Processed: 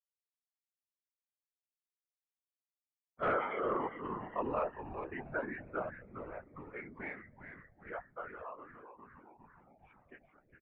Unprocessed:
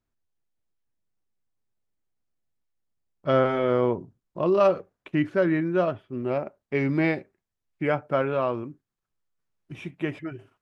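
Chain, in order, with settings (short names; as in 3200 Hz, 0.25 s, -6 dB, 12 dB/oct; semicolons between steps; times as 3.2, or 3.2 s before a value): per-bin expansion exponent 1.5; Doppler pass-by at 3.1, 8 m/s, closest 3.6 m; on a send at -20.5 dB: reverb RT60 3.3 s, pre-delay 4 ms; on the sum: reverb removal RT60 1.2 s; in parallel at 0 dB: negative-ratio compressor -37 dBFS, ratio -1; on the sum: differentiator; notches 50/100/150/200/250/300 Hz; frequency-shifting echo 0.407 s, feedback 62%, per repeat -130 Hz, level -9.5 dB; whisperiser; wavefolder -39.5 dBFS; LPF 1700 Hz 24 dB/oct; gain +15.5 dB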